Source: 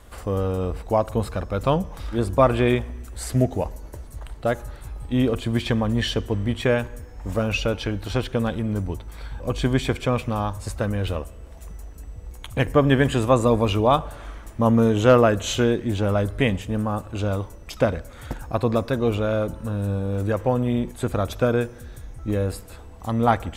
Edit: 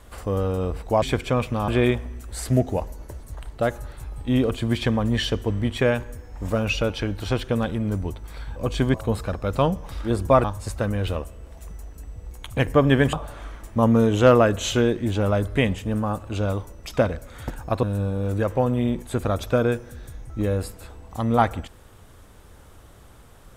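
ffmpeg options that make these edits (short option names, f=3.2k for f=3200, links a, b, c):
-filter_complex "[0:a]asplit=7[a][b][c][d][e][f][g];[a]atrim=end=1.022[h];[b]atrim=start=9.778:end=10.442[i];[c]atrim=start=2.518:end=9.782[j];[d]atrim=start=1.018:end=2.522[k];[e]atrim=start=10.438:end=13.132[l];[f]atrim=start=13.958:end=18.662[m];[g]atrim=start=19.718[n];[h][i]acrossfade=d=0.004:c1=hsin:c2=hsin[o];[o][j]acrossfade=d=0.004:c1=hsin:c2=hsin[p];[p][k]acrossfade=d=0.004:c1=hsin:c2=hsin[q];[q][l]acrossfade=d=0.004:c1=hsin:c2=hsin[r];[r][m]acrossfade=d=0.004:c1=hsin:c2=hsin[s];[s][n]acrossfade=d=0.004:c1=hsin:c2=hsin"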